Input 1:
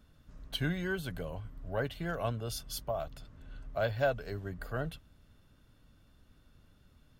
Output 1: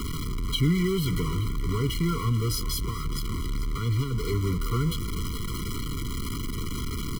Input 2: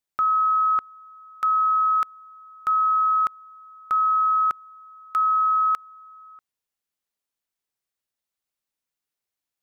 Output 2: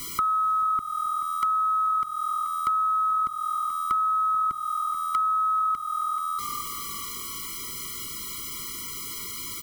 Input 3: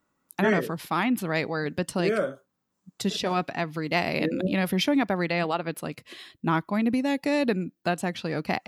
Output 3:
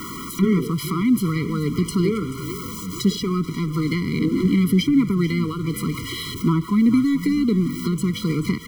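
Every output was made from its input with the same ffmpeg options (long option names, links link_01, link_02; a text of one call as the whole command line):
ffmpeg -i in.wav -filter_complex "[0:a]aeval=exprs='val(0)+0.5*0.0237*sgn(val(0))':channel_layout=same,equalizer=frequency=500:width_type=o:width=0.33:gain=-9,equalizer=frequency=800:width_type=o:width=0.33:gain=4,equalizer=frequency=1600:width_type=o:width=0.33:gain=-6,asplit=5[link_01][link_02][link_03][link_04][link_05];[link_02]adelay=433,afreqshift=-41,volume=-15dB[link_06];[link_03]adelay=866,afreqshift=-82,volume=-22.5dB[link_07];[link_04]adelay=1299,afreqshift=-123,volume=-30.1dB[link_08];[link_05]adelay=1732,afreqshift=-164,volume=-37.6dB[link_09];[link_01][link_06][link_07][link_08][link_09]amix=inputs=5:normalize=0,acrossover=split=320[link_10][link_11];[link_11]acompressor=threshold=-33dB:ratio=5[link_12];[link_10][link_12]amix=inputs=2:normalize=0,afftfilt=real='re*eq(mod(floor(b*sr/1024/480),2),0)':imag='im*eq(mod(floor(b*sr/1024/480),2),0)':win_size=1024:overlap=0.75,volume=8.5dB" out.wav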